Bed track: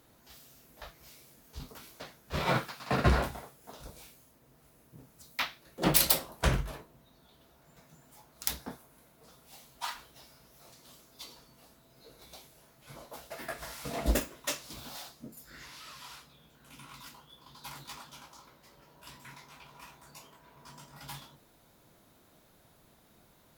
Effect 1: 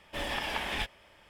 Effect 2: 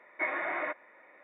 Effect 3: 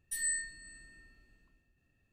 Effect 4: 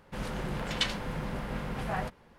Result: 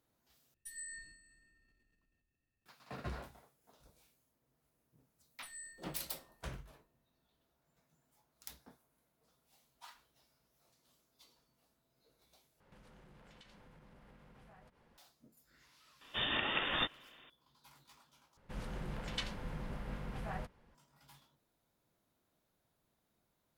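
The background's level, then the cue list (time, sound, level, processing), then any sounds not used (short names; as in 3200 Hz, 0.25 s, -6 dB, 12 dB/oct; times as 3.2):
bed track -18 dB
0.54 replace with 3 -15 dB + transient shaper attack +4 dB, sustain +10 dB
5.31 add 3 -16.5 dB
12.6 replace with 4 -10 dB + compressor 8:1, threshold -48 dBFS
16.01 add 1 -1.5 dB + inverted band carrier 3600 Hz
18.37 replace with 4 -10.5 dB + low shelf 90 Hz +7.5 dB
not used: 2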